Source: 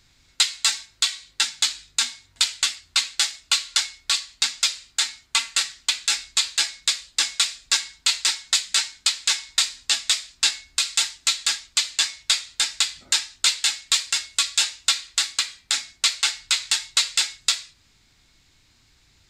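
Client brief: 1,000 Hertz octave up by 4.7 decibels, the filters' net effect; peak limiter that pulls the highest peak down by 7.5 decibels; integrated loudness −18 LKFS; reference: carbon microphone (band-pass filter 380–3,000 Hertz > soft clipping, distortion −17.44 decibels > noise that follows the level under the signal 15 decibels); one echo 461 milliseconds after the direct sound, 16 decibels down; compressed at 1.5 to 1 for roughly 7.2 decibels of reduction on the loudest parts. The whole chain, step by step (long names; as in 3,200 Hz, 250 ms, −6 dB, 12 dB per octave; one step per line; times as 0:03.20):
parametric band 1,000 Hz +6.5 dB
downward compressor 1.5 to 1, threshold −36 dBFS
brickwall limiter −16 dBFS
band-pass filter 380–3,000 Hz
single-tap delay 461 ms −16 dB
soft clipping −27 dBFS
noise that follows the level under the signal 15 dB
level +20.5 dB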